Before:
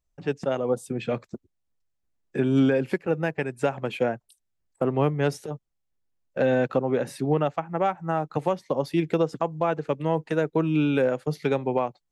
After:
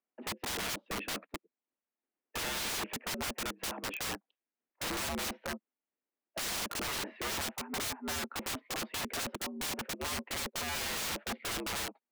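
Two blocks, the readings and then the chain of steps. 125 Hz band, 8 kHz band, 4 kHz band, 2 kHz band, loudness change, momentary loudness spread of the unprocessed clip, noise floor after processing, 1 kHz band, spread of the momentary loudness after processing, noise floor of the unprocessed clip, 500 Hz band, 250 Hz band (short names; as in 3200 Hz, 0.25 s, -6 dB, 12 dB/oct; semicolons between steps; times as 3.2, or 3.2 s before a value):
-19.5 dB, +12.5 dB, +7.0 dB, -3.0 dB, -10.0 dB, 8 LU, under -85 dBFS, -10.0 dB, 6 LU, -77 dBFS, -19.5 dB, -17.0 dB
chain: mistuned SSB +78 Hz 160–2700 Hz; wrapped overs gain 28 dB; gain -3 dB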